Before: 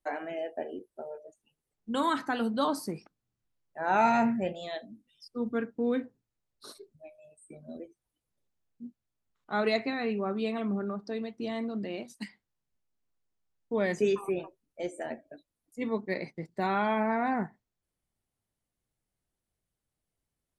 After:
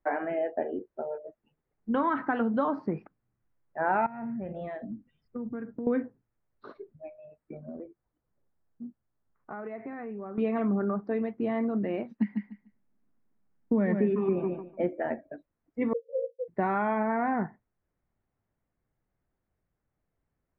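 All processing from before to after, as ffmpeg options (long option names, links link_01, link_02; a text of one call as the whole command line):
ffmpeg -i in.wav -filter_complex "[0:a]asettb=1/sr,asplit=3[link_01][link_02][link_03];[link_01]atrim=end=4.064[link_04];[link_02]atrim=start=4.06:end=5.87,asetpts=PTS-STARTPTS,afade=type=in:duration=0.004:curve=qsin,afade=type=out:start_time=1.806:duration=0.004:curve=qsin,bass=frequency=250:gain=8,treble=frequency=4000:gain=-12,acompressor=threshold=-38dB:ratio=12:attack=3.2:release=140:knee=1:detection=peak[link_05];[link_03]atrim=start=5.866[link_06];[link_04][link_05]acrossfade=duration=0.004:curve1=hsin:curve2=qsin[link_07];[link_07][link_06]acrossfade=duration=0.004:curve1=qsin:curve2=hsin,asettb=1/sr,asplit=3[link_08][link_09][link_10];[link_08]atrim=end=7.664[link_11];[link_09]atrim=start=7.66:end=10.38,asetpts=PTS-STARTPTS,afade=type=in:duration=0.004:curve=qsin,afade=type=out:start_time=2.716:duration=0.004:curve=qsin,lowpass=1900,acompressor=threshold=-42dB:ratio=6:attack=3.2:release=140:knee=1:detection=peak[link_12];[link_10]atrim=start=10.376[link_13];[link_11][link_12]acrossfade=duration=0.004:curve1=hsin:curve2=qsin[link_14];[link_14][link_13]acrossfade=duration=0.004:curve1=qsin:curve2=hsin,asettb=1/sr,asplit=3[link_15][link_16][link_17];[link_15]atrim=end=12.114[link_18];[link_16]atrim=start=12.11:end=14.93,asetpts=PTS-STARTPTS,afade=type=in:duration=0.004:curve=qsin,afade=type=out:start_time=2.816:duration=0.004:curve=qsin,equalizer=frequency=220:width=1.6:gain=13,aecho=1:1:147|294|441:0.376|0.0677|0.0122,atrim=end_sample=124362[link_19];[link_17]atrim=start=14.926[link_20];[link_18][link_19]acrossfade=duration=0.004:curve1=hsin:curve2=qsin[link_21];[link_21][link_20]acrossfade=duration=0.004:curve1=qsin:curve2=hsin,asettb=1/sr,asplit=3[link_22][link_23][link_24];[link_22]atrim=end=15.934[link_25];[link_23]atrim=start=15.93:end=16.48,asetpts=PTS-STARTPTS,afade=type=in:duration=0.004:curve=qsin,afade=type=out:start_time=0.546:duration=0.004:curve=qsin,acontrast=68,asuperpass=centerf=500:order=12:qfactor=6.6[link_26];[link_24]atrim=start=16.476[link_27];[link_25][link_26]acrossfade=duration=0.004:curve1=hsin:curve2=qsin[link_28];[link_28][link_27]acrossfade=duration=0.004:curve1=qsin:curve2=hsin,lowpass=frequency=2000:width=0.5412,lowpass=frequency=2000:width=1.3066,acompressor=threshold=-29dB:ratio=6,volume=6dB" out.wav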